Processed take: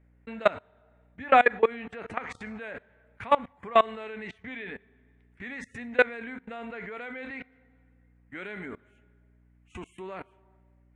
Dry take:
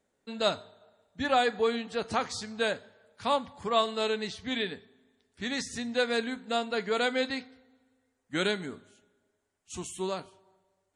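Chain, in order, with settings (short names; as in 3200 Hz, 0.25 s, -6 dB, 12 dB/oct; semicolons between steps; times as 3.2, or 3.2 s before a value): dynamic EQ 150 Hz, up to -6 dB, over -56 dBFS, Q 2.7; hum 60 Hz, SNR 29 dB; resonant high shelf 3200 Hz -13.5 dB, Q 3; level quantiser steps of 23 dB; gain +7.5 dB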